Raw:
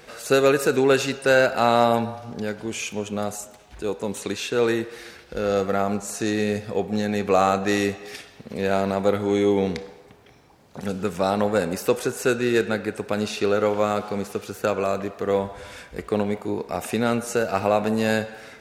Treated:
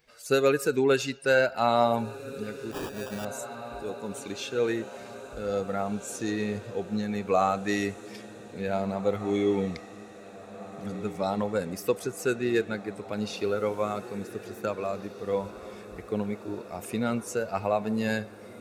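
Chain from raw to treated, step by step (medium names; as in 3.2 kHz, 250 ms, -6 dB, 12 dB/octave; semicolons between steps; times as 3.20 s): expander on every frequency bin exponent 1.5; on a send: echo that smears into a reverb 1874 ms, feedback 62%, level -15 dB; 2.71–3.25 s: on the sum: sample-rate reducer 2.1 kHz, jitter 0%; trim -3 dB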